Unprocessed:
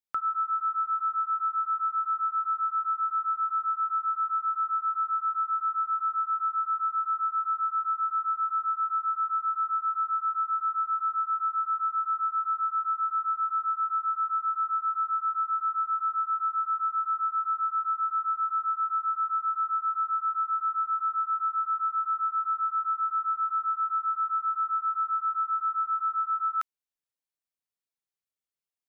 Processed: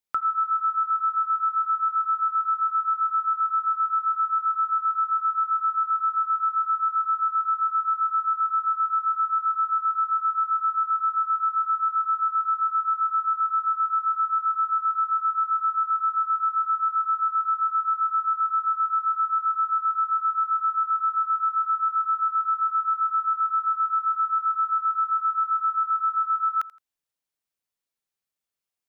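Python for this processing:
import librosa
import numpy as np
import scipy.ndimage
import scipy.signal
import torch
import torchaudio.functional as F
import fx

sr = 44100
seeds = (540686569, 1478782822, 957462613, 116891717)

p1 = fx.dynamic_eq(x, sr, hz=1200.0, q=6.4, threshold_db=-43.0, ratio=4.0, max_db=-5)
p2 = fx.level_steps(p1, sr, step_db=10)
p3 = p1 + (p2 * librosa.db_to_amplitude(2.5))
y = fx.echo_feedback(p3, sr, ms=84, feedback_pct=27, wet_db=-19)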